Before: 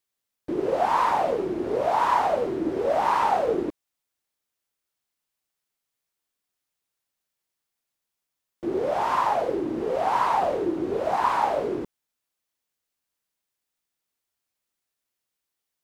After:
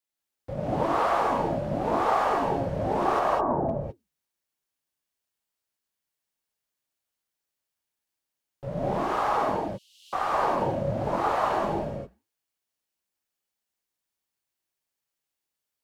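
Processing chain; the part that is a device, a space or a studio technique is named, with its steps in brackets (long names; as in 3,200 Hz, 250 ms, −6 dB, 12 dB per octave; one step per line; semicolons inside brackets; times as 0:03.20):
alien voice (ring modulation 210 Hz; flanger 1.9 Hz, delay 2.8 ms, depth 7.6 ms, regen −85%)
0:03.19–0:03.69: low-pass filter 1,200 Hz 24 dB per octave
0:09.56–0:10.13: Chebyshev high-pass filter 2,900 Hz, order 6
reverb whose tail is shaped and stops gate 230 ms rising, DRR −1.5 dB
level +1.5 dB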